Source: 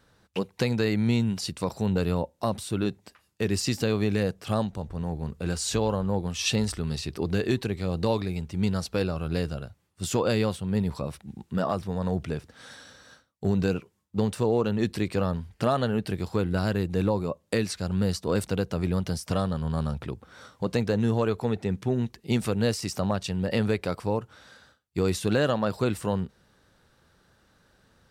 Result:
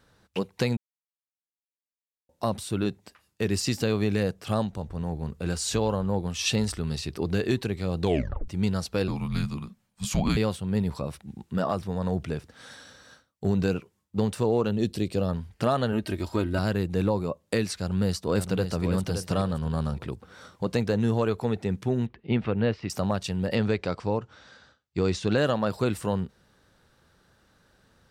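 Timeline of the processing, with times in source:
0.77–2.29 mute
8.01 tape stop 0.47 s
9.08–10.37 frequency shift -290 Hz
14.71–15.29 band shelf 1400 Hz -9 dB
15.92–16.59 comb 3.2 ms
17.79–18.84 echo throw 0.57 s, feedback 25%, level -7.5 dB
22.06–22.9 LPF 3000 Hz 24 dB/oct
23.55–25.38 LPF 6800 Hz 24 dB/oct

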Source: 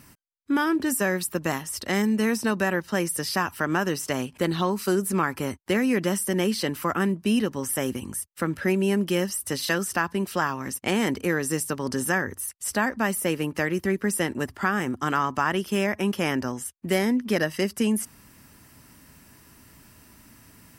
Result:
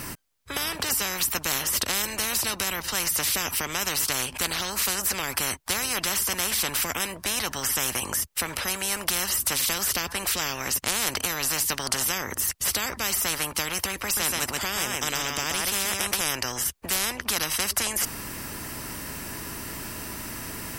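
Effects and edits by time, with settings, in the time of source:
14.04–16.21 echo 0.129 s -5.5 dB
whole clip: low shelf 220 Hz +6.5 dB; spectral compressor 10:1; gain +4 dB

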